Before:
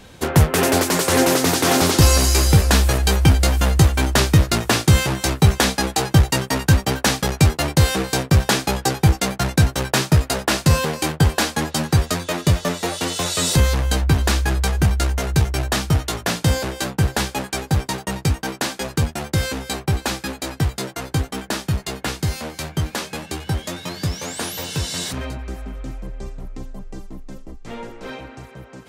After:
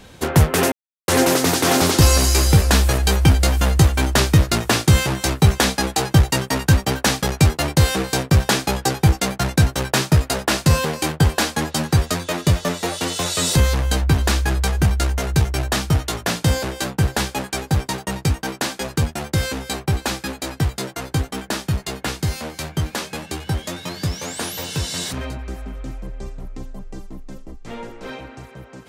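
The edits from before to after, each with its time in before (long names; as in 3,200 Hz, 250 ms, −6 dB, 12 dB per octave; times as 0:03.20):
0:00.72–0:01.08: silence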